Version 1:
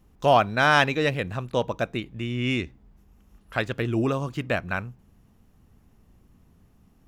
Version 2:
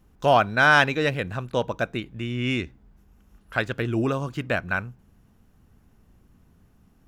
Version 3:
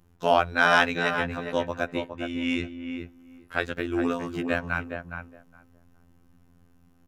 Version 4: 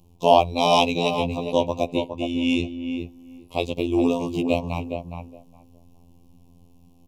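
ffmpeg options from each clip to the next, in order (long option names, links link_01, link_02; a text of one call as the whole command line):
ffmpeg -i in.wav -af "equalizer=frequency=1500:width=6.5:gain=5.5" out.wav
ffmpeg -i in.wav -filter_complex "[0:a]afftfilt=real='hypot(re,im)*cos(PI*b)':imag='0':win_size=2048:overlap=0.75,asplit=2[link_01][link_02];[link_02]adelay=414,lowpass=frequency=1500:poles=1,volume=-6dB,asplit=2[link_03][link_04];[link_04]adelay=414,lowpass=frequency=1500:poles=1,volume=0.16,asplit=2[link_05][link_06];[link_06]adelay=414,lowpass=frequency=1500:poles=1,volume=0.16[link_07];[link_01][link_03][link_05][link_07]amix=inputs=4:normalize=0,volume=1dB" out.wav
ffmpeg -i in.wav -af "asuperstop=centerf=1600:order=8:qfactor=1.1,volume=6dB" out.wav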